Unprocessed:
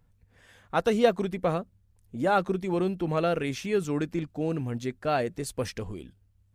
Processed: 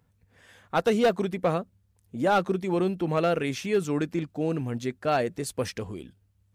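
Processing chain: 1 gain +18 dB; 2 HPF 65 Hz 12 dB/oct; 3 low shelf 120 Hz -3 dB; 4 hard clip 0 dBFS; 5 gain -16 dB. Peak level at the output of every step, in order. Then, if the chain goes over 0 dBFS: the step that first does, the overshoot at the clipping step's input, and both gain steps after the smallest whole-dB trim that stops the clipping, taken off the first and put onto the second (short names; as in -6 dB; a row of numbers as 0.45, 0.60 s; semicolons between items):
+9.5, +9.5, +9.5, 0.0, -16.0 dBFS; step 1, 9.5 dB; step 1 +8 dB, step 5 -6 dB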